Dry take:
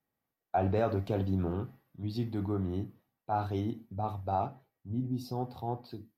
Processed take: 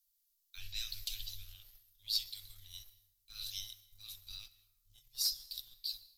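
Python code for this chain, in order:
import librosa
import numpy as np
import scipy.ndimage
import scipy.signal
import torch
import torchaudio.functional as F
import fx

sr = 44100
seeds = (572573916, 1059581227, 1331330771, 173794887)

y = scipy.signal.sosfilt(scipy.signal.cheby2(4, 80, [150.0, 860.0], 'bandstop', fs=sr, output='sos'), x)
y = fx.leveller(y, sr, passes=1)
y = fx.rev_plate(y, sr, seeds[0], rt60_s=1.3, hf_ratio=0.45, predelay_ms=110, drr_db=17.0)
y = y * 10.0 ** (16.0 / 20.0)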